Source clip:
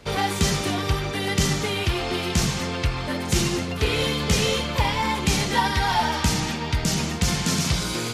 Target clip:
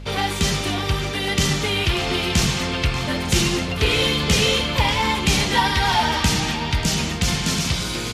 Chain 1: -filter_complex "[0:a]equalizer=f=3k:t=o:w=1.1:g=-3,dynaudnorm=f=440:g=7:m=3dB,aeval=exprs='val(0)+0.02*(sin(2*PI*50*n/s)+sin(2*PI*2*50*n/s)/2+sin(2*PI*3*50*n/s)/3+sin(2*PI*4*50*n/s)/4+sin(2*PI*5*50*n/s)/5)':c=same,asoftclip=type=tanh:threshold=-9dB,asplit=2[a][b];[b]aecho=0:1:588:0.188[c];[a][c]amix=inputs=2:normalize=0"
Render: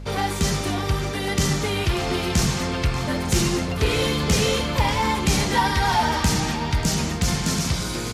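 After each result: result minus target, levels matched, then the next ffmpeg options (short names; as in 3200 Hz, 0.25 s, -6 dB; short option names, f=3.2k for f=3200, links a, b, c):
soft clip: distortion +12 dB; 4000 Hz band -3.5 dB
-filter_complex "[0:a]equalizer=f=3k:t=o:w=1.1:g=-3,dynaudnorm=f=440:g=7:m=3dB,aeval=exprs='val(0)+0.02*(sin(2*PI*50*n/s)+sin(2*PI*2*50*n/s)/2+sin(2*PI*3*50*n/s)/3+sin(2*PI*4*50*n/s)/4+sin(2*PI*5*50*n/s)/5)':c=same,asoftclip=type=tanh:threshold=-1.5dB,asplit=2[a][b];[b]aecho=0:1:588:0.188[c];[a][c]amix=inputs=2:normalize=0"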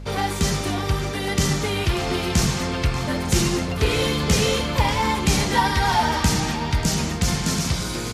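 4000 Hz band -3.5 dB
-filter_complex "[0:a]equalizer=f=3k:t=o:w=1.1:g=4.5,dynaudnorm=f=440:g=7:m=3dB,aeval=exprs='val(0)+0.02*(sin(2*PI*50*n/s)+sin(2*PI*2*50*n/s)/2+sin(2*PI*3*50*n/s)/3+sin(2*PI*4*50*n/s)/4+sin(2*PI*5*50*n/s)/5)':c=same,asoftclip=type=tanh:threshold=-1.5dB,asplit=2[a][b];[b]aecho=0:1:588:0.188[c];[a][c]amix=inputs=2:normalize=0"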